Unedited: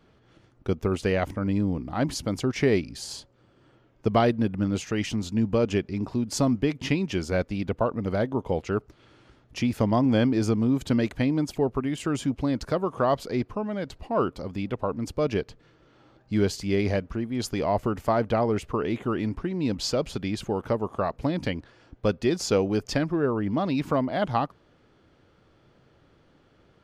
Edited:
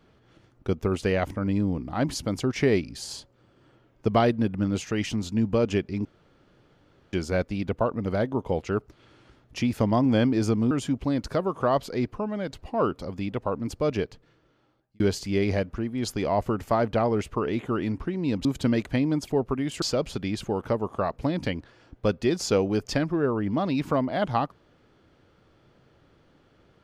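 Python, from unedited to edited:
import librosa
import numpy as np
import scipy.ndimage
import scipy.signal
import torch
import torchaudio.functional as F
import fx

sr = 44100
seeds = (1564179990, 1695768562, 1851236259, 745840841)

y = fx.edit(x, sr, fx.room_tone_fill(start_s=6.05, length_s=1.08),
    fx.move(start_s=10.71, length_s=1.37, to_s=19.82),
    fx.fade_out_span(start_s=15.28, length_s=1.09), tone=tone)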